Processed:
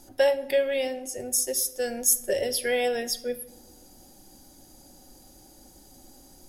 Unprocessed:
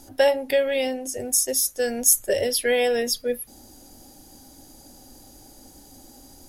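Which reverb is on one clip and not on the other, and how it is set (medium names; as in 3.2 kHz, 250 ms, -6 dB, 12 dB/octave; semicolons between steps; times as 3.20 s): simulated room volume 3700 m³, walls furnished, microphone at 0.96 m; trim -4.5 dB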